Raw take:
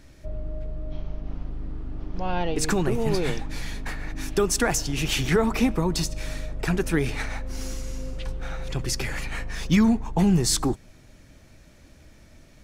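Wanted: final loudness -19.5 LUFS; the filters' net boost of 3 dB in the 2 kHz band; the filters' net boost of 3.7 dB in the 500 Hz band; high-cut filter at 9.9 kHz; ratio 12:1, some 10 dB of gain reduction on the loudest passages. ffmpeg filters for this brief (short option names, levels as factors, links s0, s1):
-af "lowpass=9900,equalizer=f=500:t=o:g=4.5,equalizer=f=2000:t=o:g=3.5,acompressor=threshold=0.0631:ratio=12,volume=3.98"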